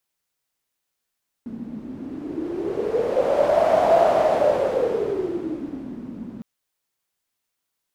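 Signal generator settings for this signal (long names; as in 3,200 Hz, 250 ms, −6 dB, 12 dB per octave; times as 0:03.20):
wind from filtered noise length 4.96 s, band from 230 Hz, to 660 Hz, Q 9.4, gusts 1, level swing 17.5 dB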